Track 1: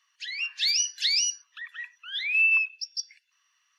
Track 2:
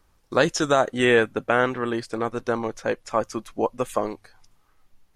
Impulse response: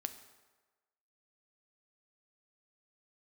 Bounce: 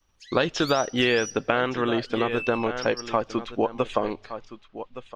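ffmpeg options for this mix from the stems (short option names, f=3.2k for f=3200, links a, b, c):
-filter_complex "[0:a]aexciter=amount=5:drive=2.9:freq=5.1k,volume=-17dB,asplit=2[a][b];[b]volume=-3.5dB[c];[1:a]lowpass=f=3.9k:w=0.5412,lowpass=f=3.9k:w=1.3066,aexciter=amount=3:drive=1.3:freq=2.6k,agate=range=-33dB:threshold=-54dB:ratio=3:detection=peak,volume=3dB,asplit=3[d][e][f];[e]volume=-21dB[g];[f]volume=-15.5dB[h];[2:a]atrim=start_sample=2205[i];[c][g]amix=inputs=2:normalize=0[j];[j][i]afir=irnorm=-1:irlink=0[k];[h]aecho=0:1:1166:1[l];[a][d][k][l]amix=inputs=4:normalize=0,acompressor=threshold=-19dB:ratio=5"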